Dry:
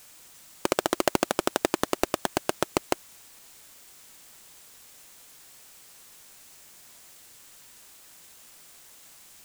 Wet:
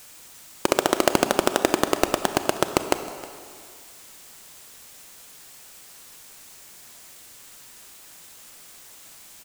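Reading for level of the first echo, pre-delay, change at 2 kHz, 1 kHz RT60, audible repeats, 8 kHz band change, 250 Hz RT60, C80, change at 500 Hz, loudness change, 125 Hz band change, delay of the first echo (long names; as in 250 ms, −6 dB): −19.5 dB, 28 ms, +5.0 dB, 2.3 s, 1, +5.0 dB, 2.0 s, 10.0 dB, +5.5 dB, +5.0 dB, +5.0 dB, 314 ms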